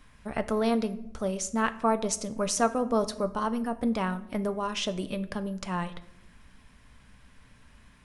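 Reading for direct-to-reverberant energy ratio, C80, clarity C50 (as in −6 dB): 10.0 dB, 18.0 dB, 16.0 dB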